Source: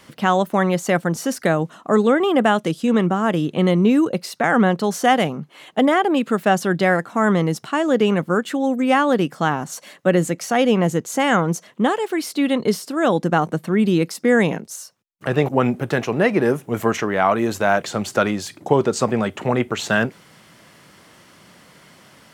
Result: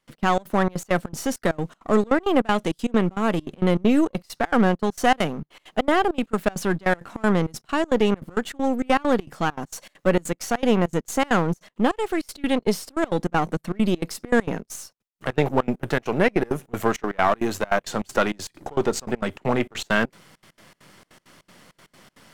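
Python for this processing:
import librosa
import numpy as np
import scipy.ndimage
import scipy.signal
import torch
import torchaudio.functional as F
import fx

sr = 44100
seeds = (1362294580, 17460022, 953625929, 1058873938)

y = np.where(x < 0.0, 10.0 ** (-7.0 / 20.0) * x, x)
y = fx.step_gate(y, sr, bpm=199, pattern='.x.xx.xxx', floor_db=-24.0, edge_ms=4.5)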